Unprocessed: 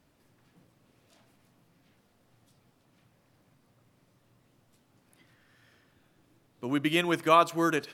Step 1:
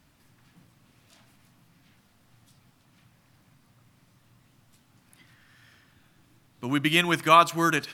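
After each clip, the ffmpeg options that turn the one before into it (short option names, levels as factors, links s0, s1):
-af "equalizer=f=460:t=o:w=1.3:g=-10,volume=2.24"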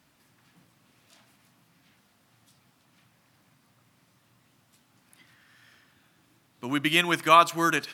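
-af "highpass=f=220:p=1"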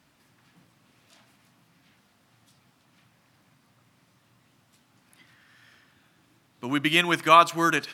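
-af "highshelf=f=9000:g=-5.5,volume=1.19"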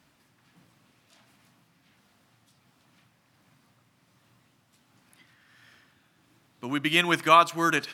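-af "tremolo=f=1.4:d=0.29"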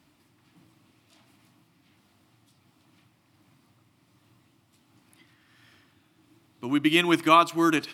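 -af "equalizer=f=100:t=o:w=0.33:g=7,equalizer=f=315:t=o:w=0.33:g=9,equalizer=f=500:t=o:w=0.33:g=-4,equalizer=f=1600:t=o:w=0.33:g=-6,equalizer=f=6300:t=o:w=0.33:g=-3"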